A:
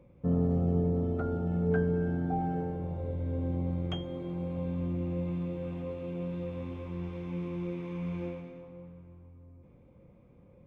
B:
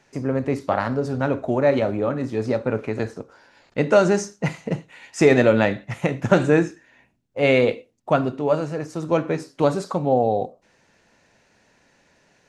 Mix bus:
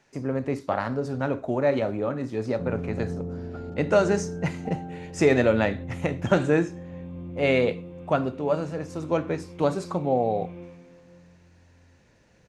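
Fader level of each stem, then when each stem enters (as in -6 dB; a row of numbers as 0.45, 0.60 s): -4.5, -4.5 dB; 2.35, 0.00 s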